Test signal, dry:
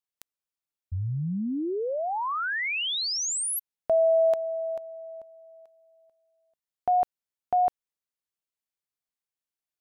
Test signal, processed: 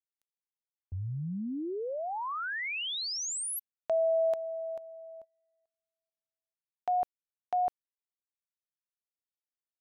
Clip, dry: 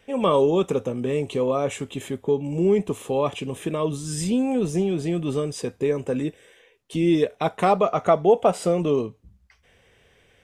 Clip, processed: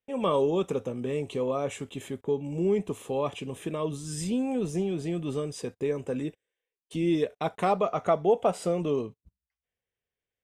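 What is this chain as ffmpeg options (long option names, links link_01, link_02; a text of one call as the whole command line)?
ffmpeg -i in.wav -af "agate=range=-28dB:threshold=-49dB:ratio=16:release=67:detection=peak,volume=-6dB" out.wav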